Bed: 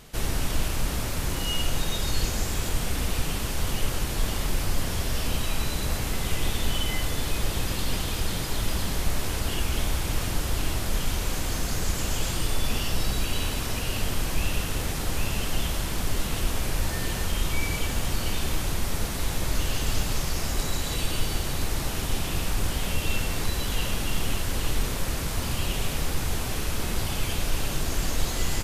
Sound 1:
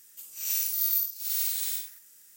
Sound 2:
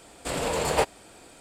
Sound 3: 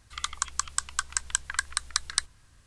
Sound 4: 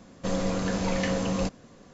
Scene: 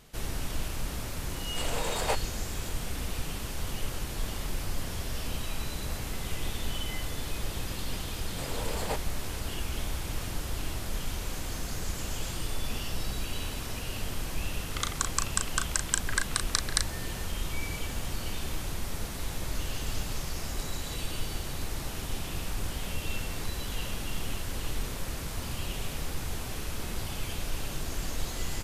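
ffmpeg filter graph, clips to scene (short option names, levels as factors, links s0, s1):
-filter_complex "[2:a]asplit=2[s0][s1];[0:a]volume=0.447[s2];[s0]highpass=f=570:p=1[s3];[s1]acontrast=54[s4];[3:a]asplit=2[s5][s6];[s6]adelay=36,volume=0.501[s7];[s5][s7]amix=inputs=2:normalize=0[s8];[s3]atrim=end=1.4,asetpts=PTS-STARTPTS,volume=0.596,afade=t=in:d=0.004:c=hsin,afade=t=out:st=1.396:d=0.004:c=hsin,adelay=1310[s9];[s4]atrim=end=1.4,asetpts=PTS-STARTPTS,volume=0.15,afade=t=in:d=0.004:c=hsin,afade=t=out:st=1.396:d=0.004:c=hsin,adelay=8120[s10];[s8]atrim=end=2.66,asetpts=PTS-STARTPTS,volume=0.841,afade=t=in:d=0.004:c=hsin,afade=t=out:st=2.656:d=0.004:c=hsin,adelay=14590[s11];[s2][s9][s10][s11]amix=inputs=4:normalize=0"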